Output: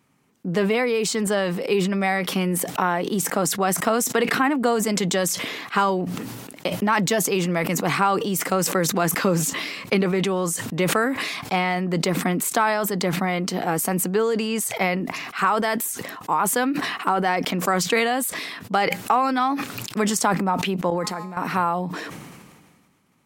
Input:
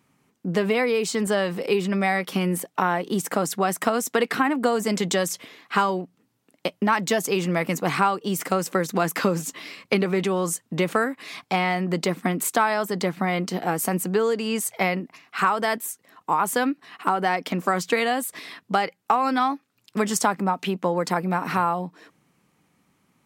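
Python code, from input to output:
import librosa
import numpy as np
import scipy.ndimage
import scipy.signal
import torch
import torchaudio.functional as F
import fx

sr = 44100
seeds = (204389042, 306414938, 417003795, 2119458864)

y = fx.comb_fb(x, sr, f0_hz=210.0, decay_s=1.6, harmonics='all', damping=0.0, mix_pct=80, at=(20.9, 21.37))
y = fx.sustainer(y, sr, db_per_s=33.0)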